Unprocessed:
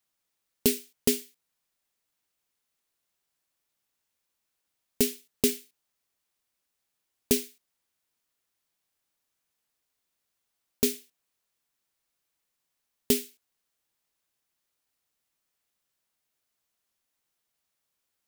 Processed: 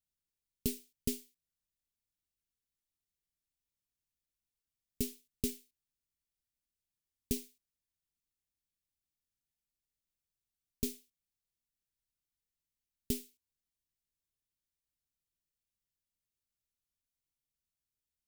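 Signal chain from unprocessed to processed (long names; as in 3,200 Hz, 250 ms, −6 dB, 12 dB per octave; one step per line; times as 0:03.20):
guitar amp tone stack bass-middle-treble 10-0-1
level +8.5 dB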